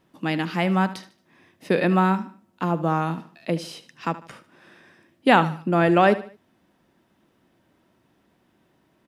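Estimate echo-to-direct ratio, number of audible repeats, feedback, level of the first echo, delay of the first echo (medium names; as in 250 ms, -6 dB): -15.0 dB, 3, 37%, -15.5 dB, 75 ms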